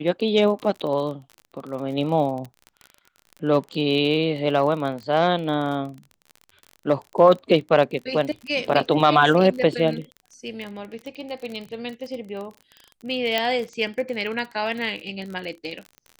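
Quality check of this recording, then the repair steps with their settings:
surface crackle 33 per second −30 dBFS
0:13.38: click −8 dBFS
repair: click removal

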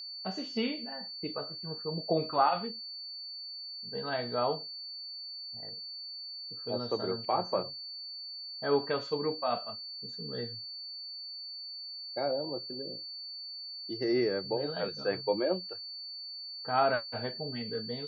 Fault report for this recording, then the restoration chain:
whistle 4,500 Hz −40 dBFS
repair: notch filter 4,500 Hz, Q 30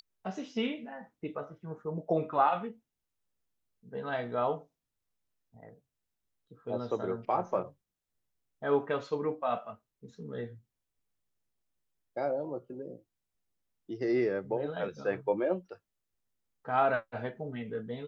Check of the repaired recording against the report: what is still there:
none of them is left

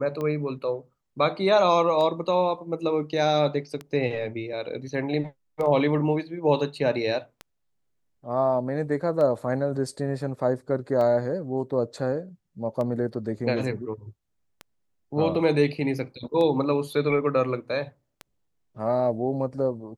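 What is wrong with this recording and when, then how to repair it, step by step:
scratch tick 33 1/3 rpm −20 dBFS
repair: click removal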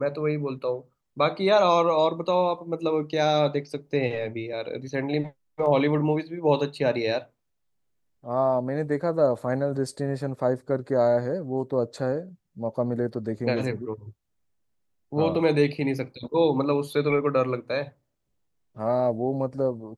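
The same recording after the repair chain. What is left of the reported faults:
none of them is left

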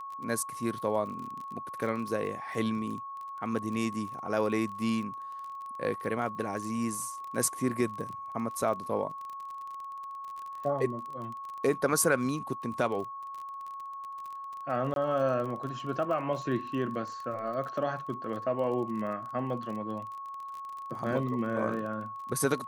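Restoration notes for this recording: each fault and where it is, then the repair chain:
surface crackle 31 per second −37 dBFS
whistle 1,100 Hz −38 dBFS
0:14.94–0:14.96: drop-out 22 ms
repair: click removal
notch filter 1,100 Hz, Q 30
repair the gap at 0:14.94, 22 ms

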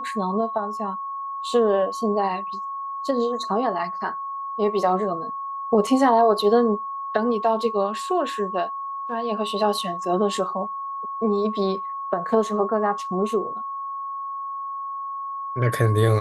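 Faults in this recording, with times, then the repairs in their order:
whistle 1,100 Hz −28 dBFS
0:05.87: drop-out 2 ms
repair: notch filter 1,100 Hz, Q 30
repair the gap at 0:05.87, 2 ms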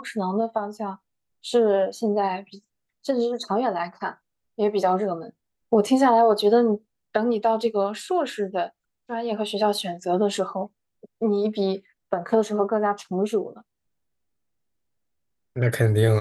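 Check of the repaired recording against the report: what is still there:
none of them is left

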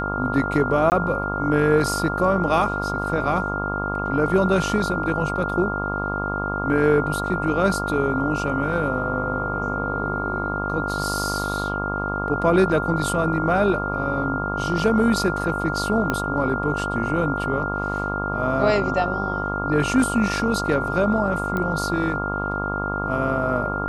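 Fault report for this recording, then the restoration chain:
mains buzz 50 Hz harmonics 27 −28 dBFS
whistle 1,400 Hz −26 dBFS
0:00.90–0:00.92: drop-out 19 ms
0:16.10: click −9 dBFS
0:21.57: click −14 dBFS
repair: click removal
hum removal 50 Hz, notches 27
notch filter 1,400 Hz, Q 30
repair the gap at 0:00.90, 19 ms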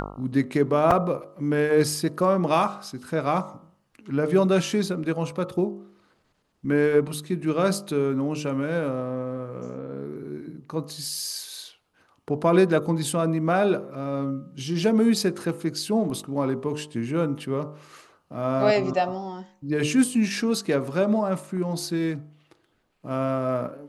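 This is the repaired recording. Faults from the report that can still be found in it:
0:16.10: click

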